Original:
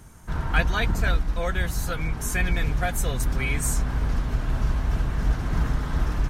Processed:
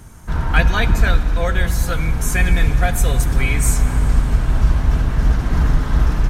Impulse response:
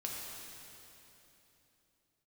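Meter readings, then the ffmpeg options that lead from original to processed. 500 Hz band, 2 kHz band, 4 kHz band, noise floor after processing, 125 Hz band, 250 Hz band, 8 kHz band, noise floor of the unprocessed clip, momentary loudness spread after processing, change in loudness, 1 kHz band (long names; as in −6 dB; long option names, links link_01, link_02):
+6.5 dB, +6.0 dB, +6.0 dB, −23 dBFS, +8.5 dB, +7.0 dB, +6.0 dB, −32 dBFS, 3 LU, +8.0 dB, +6.0 dB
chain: -filter_complex "[0:a]asplit=2[link_01][link_02];[1:a]atrim=start_sample=2205,lowshelf=frequency=200:gain=8.5[link_03];[link_02][link_03]afir=irnorm=-1:irlink=0,volume=-9.5dB[link_04];[link_01][link_04]amix=inputs=2:normalize=0,volume=4dB"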